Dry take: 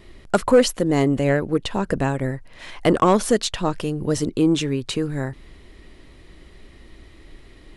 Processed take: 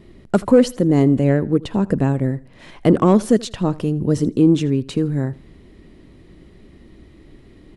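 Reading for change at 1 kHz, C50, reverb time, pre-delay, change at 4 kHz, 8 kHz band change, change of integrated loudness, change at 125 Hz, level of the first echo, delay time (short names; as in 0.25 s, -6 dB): -3.0 dB, none, none, none, -5.5 dB, -6.0 dB, +3.5 dB, +6.0 dB, -21.5 dB, 81 ms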